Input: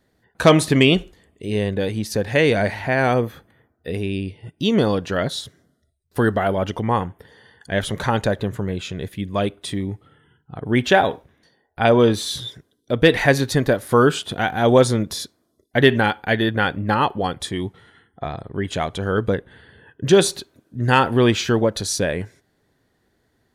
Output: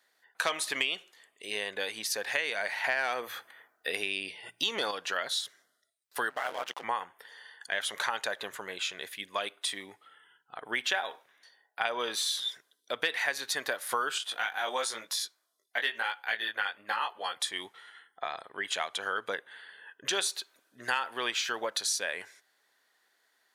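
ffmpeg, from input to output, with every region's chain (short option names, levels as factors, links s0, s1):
-filter_complex "[0:a]asettb=1/sr,asplit=3[s0][s1][s2];[s0]atrim=end=2.844[s3];[s1]atrim=start=2.84:end=4.91,asetpts=PTS-STARTPTS,afade=t=in:d=0.004:c=qsin,afade=t=out:st=2.066:d=0.004:c=qsin,bandreject=f=60:t=h:w=6,bandreject=f=120:t=h:w=6,bandreject=f=180:t=h:w=6,acontrast=80[s4];[s2]atrim=start=4.906[s5];[s3][s4]acrossfade=d=0.004:c1=hsin:c2=qsin[s6];[s6][s5]acrossfade=d=0.004:c1=qsin:c2=hsin,asettb=1/sr,asplit=3[s7][s8][s9];[s7]atrim=end=6.304[s10];[s8]atrim=start=6.3:end=6.84,asetpts=PTS-STARTPTS,afade=t=in:d=0.004:c=qsin,afade=t=out:st=0.536:d=0.004:c=qsin,bandreject=f=60:t=h:w=6,bandreject=f=120:t=h:w=6,bandreject=f=180:t=h:w=6,bandreject=f=240:t=h:w=6,aeval=exprs='sgn(val(0))*max(abs(val(0))-0.0158,0)':c=same,aeval=exprs='val(0)*sin(2*PI*64*n/s)':c=same[s11];[s9]atrim=start=6.836[s12];[s10][s11]acrossfade=d=0.004:c1=hsin:c2=qsin[s13];[s13][s12]acrossfade=d=0.004:c1=qsin:c2=hsin,asettb=1/sr,asplit=3[s14][s15][s16];[s14]atrim=end=14.184[s17];[s15]atrim=start=14.18:end=17.35,asetpts=PTS-STARTPTS,afade=t=in:d=0.004:c=qsin,afade=t=out:st=3.166:d=0.004:c=qsin,lowshelf=f=320:g=-9,flanger=delay=16.5:depth=3.6:speed=1[s18];[s16]atrim=start=17.346[s19];[s17][s18]acrossfade=d=0.004:c1=hsin:c2=qsin[s20];[s20][s19]acrossfade=d=0.004:c1=qsin:c2=hsin,highpass=1100,acompressor=threshold=0.0316:ratio=4,volume=1.19"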